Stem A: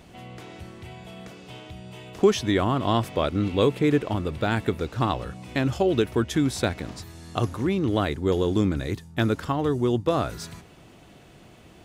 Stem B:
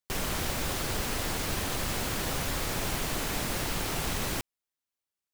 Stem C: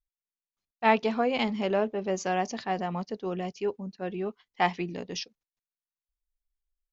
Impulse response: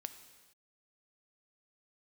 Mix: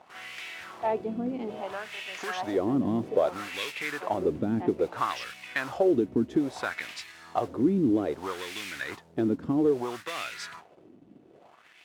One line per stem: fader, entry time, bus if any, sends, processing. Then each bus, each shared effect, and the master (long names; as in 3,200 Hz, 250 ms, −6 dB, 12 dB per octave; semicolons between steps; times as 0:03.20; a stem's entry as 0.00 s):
+1.0 dB, 0.00 s, bus A, no send, no processing
−14.5 dB, 0.00 s, bus A, no send, no processing
−7.0 dB, 0.00 s, no bus, no send, no processing
bus A: 0.0 dB, noise that follows the level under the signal 13 dB; downward compressor, threshold −22 dBFS, peak gain reduction 10.5 dB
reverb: not used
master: high-shelf EQ 2,700 Hz +7.5 dB; leveller curve on the samples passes 2; LFO wah 0.61 Hz 250–2,400 Hz, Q 2.6